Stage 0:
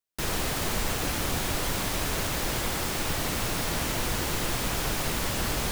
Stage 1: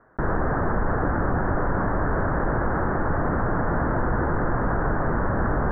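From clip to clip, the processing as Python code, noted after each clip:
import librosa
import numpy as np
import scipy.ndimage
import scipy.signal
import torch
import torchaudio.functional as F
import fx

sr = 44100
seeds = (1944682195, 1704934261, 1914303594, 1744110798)

y = scipy.signal.sosfilt(scipy.signal.butter(12, 1700.0, 'lowpass', fs=sr, output='sos'), x)
y = fx.env_flatten(y, sr, amount_pct=50)
y = y * librosa.db_to_amplitude(5.5)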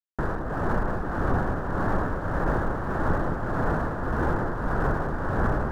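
y = np.sign(x) * np.maximum(np.abs(x) - 10.0 ** (-45.0 / 20.0), 0.0)
y = fx.tremolo_shape(y, sr, shape='triangle', hz=1.7, depth_pct=70)
y = fx.echo_alternate(y, sr, ms=214, hz=900.0, feedback_pct=82, wet_db=-8.0)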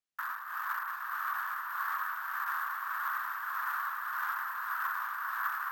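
y = scipy.signal.sosfilt(scipy.signal.ellip(4, 1.0, 50, 1100.0, 'highpass', fs=sr, output='sos'), x)
y = np.repeat(y[::3], 3)[:len(y)]
y = y + 10.0 ** (-7.0 / 20.0) * np.pad(y, (int(817 * sr / 1000.0), 0))[:len(y)]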